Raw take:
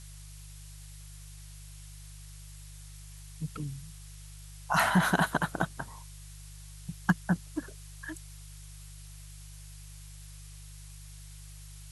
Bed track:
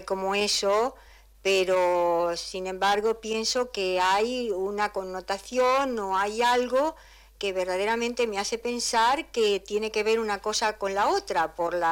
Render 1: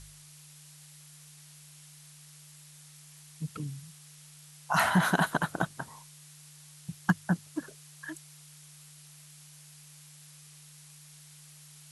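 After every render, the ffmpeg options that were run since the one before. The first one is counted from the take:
-af "bandreject=f=50:t=h:w=4,bandreject=f=100:t=h:w=4"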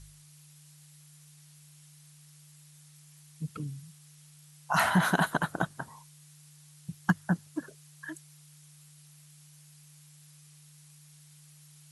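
-af "afftdn=nr=6:nf=-53"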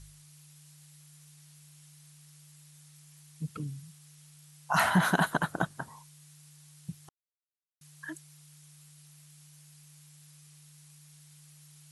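-filter_complex "[0:a]asplit=3[a][b][c];[a]atrim=end=7.09,asetpts=PTS-STARTPTS,afade=t=out:st=7.086:d=0.004:c=hsin[d];[b]atrim=start=7.09:end=7.81,asetpts=PTS-STARTPTS,volume=0[e];[c]atrim=start=7.81,asetpts=PTS-STARTPTS,afade=t=in:d=0.004:c=hsin[f];[d][e][f]concat=n=3:v=0:a=1"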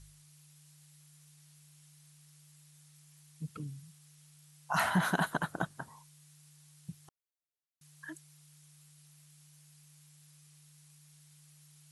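-af "volume=-4.5dB"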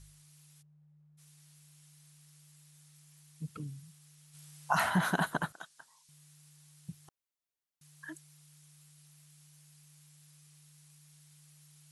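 -filter_complex "[0:a]asplit=3[a][b][c];[a]afade=t=out:st=0.61:d=0.02[d];[b]adynamicsmooth=sensitivity=4:basefreq=550,afade=t=in:st=0.61:d=0.02,afade=t=out:st=1.17:d=0.02[e];[c]afade=t=in:st=1.17:d=0.02[f];[d][e][f]amix=inputs=3:normalize=0,asplit=3[g][h][i];[g]afade=t=out:st=4.33:d=0.02[j];[h]acontrast=56,afade=t=in:st=4.33:d=0.02,afade=t=out:st=4.73:d=0.02[k];[i]afade=t=in:st=4.73:d=0.02[l];[j][k][l]amix=inputs=3:normalize=0,asettb=1/sr,asplit=3[m][n][o];[m]atrim=end=5.524[p];[n]atrim=start=5.52:end=6.09,asetpts=PTS-STARTPTS,afade=t=in:d=0.004:c=qsin,afade=t=out:st=0.566:d=0.004:c=qsin,bandpass=f=5.3k:t=q:w=0.8[q];[o]atrim=start=6.086[r];[p][q]acrossfade=d=0.004:c1=hsin:c2=qsin[s];[s][r]acrossfade=d=0.004:c1=qsin:c2=hsin"

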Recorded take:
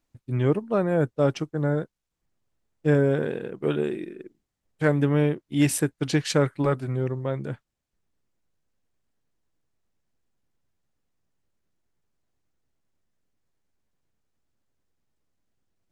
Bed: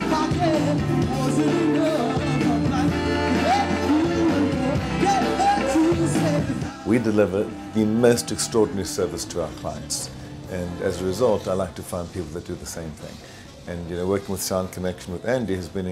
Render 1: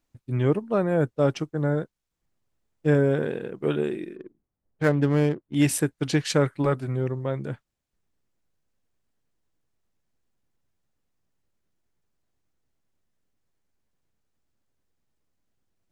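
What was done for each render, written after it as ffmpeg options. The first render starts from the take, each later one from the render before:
-filter_complex "[0:a]asettb=1/sr,asplit=3[a][b][c];[a]atrim=end=4.164[d];[b]atrim=start=4.16:end=5.55,asetpts=PTS-STARTPTS,afade=t=in:d=0.004:c=qsin,afade=t=out:st=1.386:d=0.004:c=qsin,adynamicsmooth=sensitivity=7.5:basefreq=1.3k[e];[c]atrim=start=5.546[f];[d][e]acrossfade=d=0.004:c1=hsin:c2=qsin[g];[g][f]acrossfade=d=0.004:c1=qsin:c2=hsin"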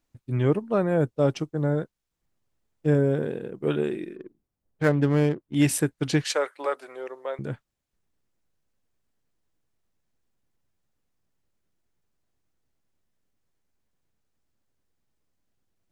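-filter_complex "[0:a]asettb=1/sr,asplit=3[a][b][c];[a]atrim=end=0.984[d];[b]atrim=start=0.98:end=1.79,asetpts=PTS-STARTPTS,afade=t=in:d=0.004:c=qsin,afade=t=out:st=0.806:d=0.004:c=qsin,equalizer=f=1.6k:t=o:w=1.1:g=-4[e];[c]atrim=start=1.786[f];[d][e]acrossfade=d=0.004:c1=hsin:c2=qsin[g];[g][f]acrossfade=d=0.004:c1=qsin:c2=hsin,asettb=1/sr,asplit=3[h][i][j];[h]atrim=end=2.864[k];[i]atrim=start=2.86:end=3.67,asetpts=PTS-STARTPTS,afade=t=in:d=0.004:c=qsin,afade=t=out:st=0.806:d=0.004:c=qsin,equalizer=f=2k:t=o:w=2.9:g=-6[l];[j]atrim=start=3.666[m];[k][l]acrossfade=d=0.004:c1=hsin:c2=qsin[n];[n][m]acrossfade=d=0.004:c1=qsin:c2=hsin,asettb=1/sr,asplit=3[o][p][q];[o]atrim=end=6.244[r];[p]atrim=start=6.24:end=7.39,asetpts=PTS-STARTPTS,afade=t=in:d=0.004:c=qsin,afade=t=out:st=1.146:d=0.004:c=qsin,highpass=f=470:w=0.5412,highpass=f=470:w=1.3066[s];[q]atrim=start=7.386[t];[r][s]acrossfade=d=0.004:c1=hsin:c2=qsin[u];[u][t]acrossfade=d=0.004:c1=qsin:c2=hsin"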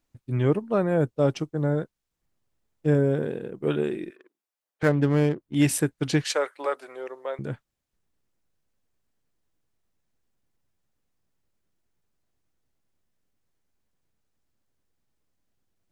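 -filter_complex "[0:a]asettb=1/sr,asplit=3[a][b][c];[a]atrim=end=4.104[d];[b]atrim=start=4.1:end=4.83,asetpts=PTS-STARTPTS,afade=t=in:d=0.004:c=qsin,afade=t=out:st=0.726:d=0.004:c=qsin,highpass=880[e];[c]atrim=start=4.826[f];[d][e]acrossfade=d=0.004:c1=hsin:c2=qsin[g];[g][f]acrossfade=d=0.004:c1=qsin:c2=hsin"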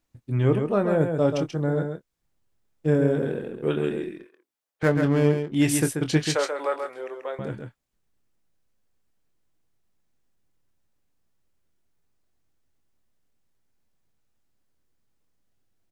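-filter_complex "[0:a]asplit=2[a][b];[b]adelay=25,volume=-10dB[c];[a][c]amix=inputs=2:normalize=0,asplit=2[d][e];[e]aecho=0:1:135:0.501[f];[d][f]amix=inputs=2:normalize=0"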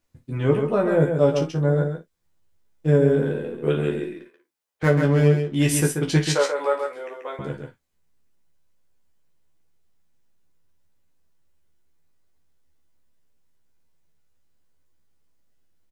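-filter_complex "[0:a]asplit=2[a][b];[b]adelay=12,volume=-5.5dB[c];[a][c]amix=inputs=2:normalize=0,aecho=1:1:14|55:0.562|0.237"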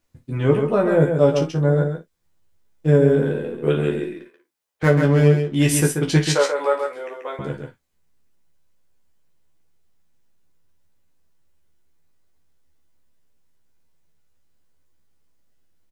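-af "volume=2.5dB"

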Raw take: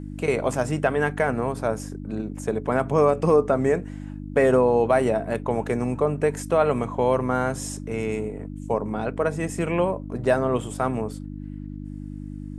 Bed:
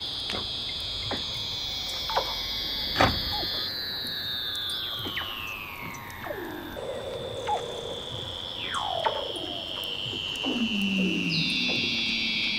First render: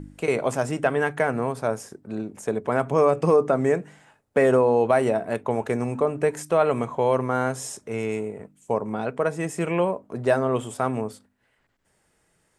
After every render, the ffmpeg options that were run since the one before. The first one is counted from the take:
-af "bandreject=f=50:t=h:w=4,bandreject=f=100:t=h:w=4,bandreject=f=150:t=h:w=4,bandreject=f=200:t=h:w=4,bandreject=f=250:t=h:w=4,bandreject=f=300:t=h:w=4"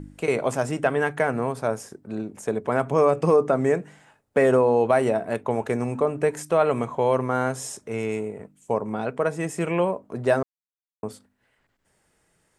-filter_complex "[0:a]asplit=3[a][b][c];[a]atrim=end=10.43,asetpts=PTS-STARTPTS,afade=t=out:st=10.426:d=0.004:c=hsin[d];[b]atrim=start=10.43:end=11.03,asetpts=PTS-STARTPTS,volume=0[e];[c]atrim=start=11.03,asetpts=PTS-STARTPTS,afade=t=in:d=0.004:c=hsin[f];[d][e][f]concat=n=3:v=0:a=1"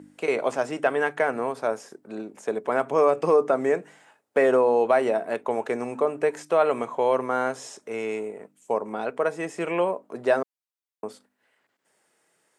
-filter_complex "[0:a]highpass=310,acrossover=split=6300[a][b];[b]acompressor=threshold=-55dB:ratio=4:attack=1:release=60[c];[a][c]amix=inputs=2:normalize=0"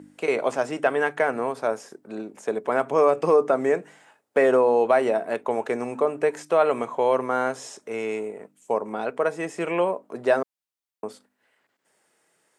-af "volume=1dB"

